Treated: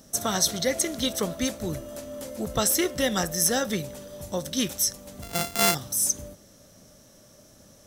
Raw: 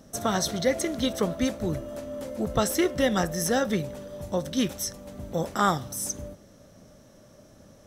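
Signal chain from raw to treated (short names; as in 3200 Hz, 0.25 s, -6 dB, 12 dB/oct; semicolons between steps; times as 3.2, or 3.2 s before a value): 5.22–5.75 sample sorter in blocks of 64 samples; high shelf 3400 Hz +12 dB; gain -2.5 dB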